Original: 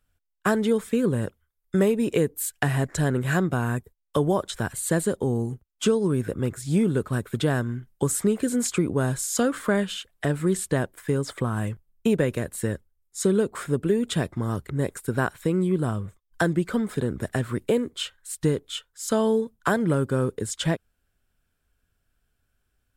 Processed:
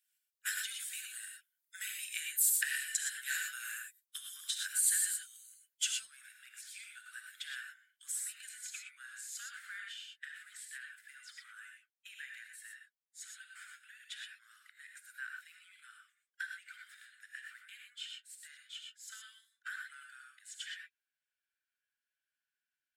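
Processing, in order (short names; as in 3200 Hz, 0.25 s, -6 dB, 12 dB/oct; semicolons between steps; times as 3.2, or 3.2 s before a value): bin magnitudes rounded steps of 15 dB; steep high-pass 1500 Hz 72 dB/oct; high shelf 3400 Hz +10.5 dB, from 5.94 s -3 dB, from 8.49 s -10.5 dB; non-linear reverb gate 0.14 s rising, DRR 2 dB; gain -8.5 dB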